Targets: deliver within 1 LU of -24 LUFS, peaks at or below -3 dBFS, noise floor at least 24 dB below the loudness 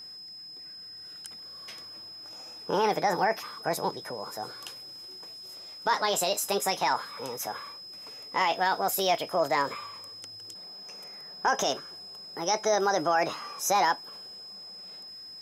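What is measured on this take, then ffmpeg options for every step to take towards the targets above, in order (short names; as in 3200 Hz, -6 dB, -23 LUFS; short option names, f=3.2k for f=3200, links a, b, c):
steady tone 5100 Hz; tone level -42 dBFS; loudness -28.5 LUFS; peak -13.0 dBFS; loudness target -24.0 LUFS
-> -af "bandreject=f=5.1k:w=30"
-af "volume=4.5dB"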